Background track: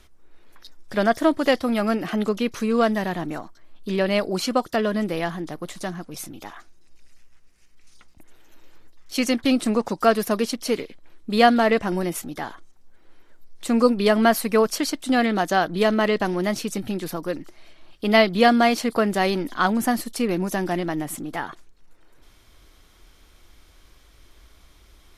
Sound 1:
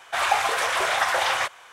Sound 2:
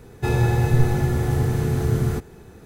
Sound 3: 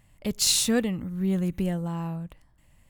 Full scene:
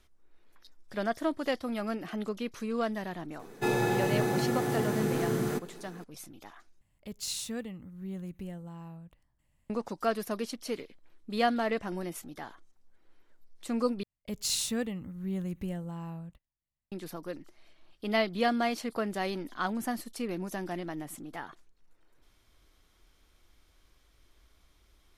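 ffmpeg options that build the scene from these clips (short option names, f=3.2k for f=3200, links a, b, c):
-filter_complex "[3:a]asplit=2[a][b];[0:a]volume=-11.5dB[c];[2:a]highpass=f=180:w=0.5412,highpass=f=180:w=1.3066[d];[b]agate=range=-26dB:threshold=-49dB:ratio=16:release=89:detection=peak[e];[c]asplit=3[f][g][h];[f]atrim=end=6.814[i];[a]atrim=end=2.89,asetpts=PTS-STARTPTS,volume=-13.5dB[j];[g]atrim=start=9.696:end=14.034[k];[e]atrim=end=2.89,asetpts=PTS-STARTPTS,volume=-8.5dB[l];[h]atrim=start=16.916[m];[d]atrim=end=2.65,asetpts=PTS-STARTPTS,volume=-2.5dB,afade=t=in:d=0.004:c=hsin,afade=t=out:st=2.646:d=0.004:c=hsin,adelay=3390[n];[i][j]acrossfade=d=0.004:c1=hsin:c2=hsin[o];[o][k]acrossfade=d=0.004:c1=hsin:c2=hsin[p];[p][l]acrossfade=d=0.004:c1=hsin:c2=hsin[q];[q][m]acrossfade=d=0.004:c1=hsin:c2=hsin[r];[r][n]amix=inputs=2:normalize=0"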